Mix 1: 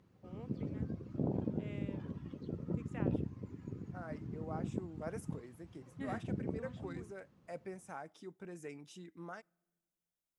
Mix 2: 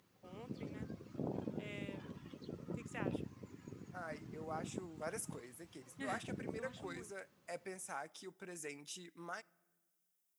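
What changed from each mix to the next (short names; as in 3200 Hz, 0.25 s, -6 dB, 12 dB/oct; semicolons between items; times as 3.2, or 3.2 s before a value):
speech: send +10.0 dB; master: add tilt +3 dB/oct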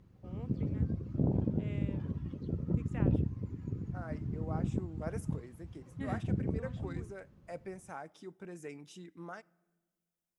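background: remove HPF 280 Hz 6 dB/oct; master: add tilt -3 dB/oct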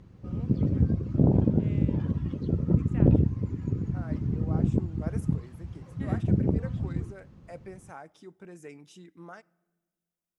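background +9.0 dB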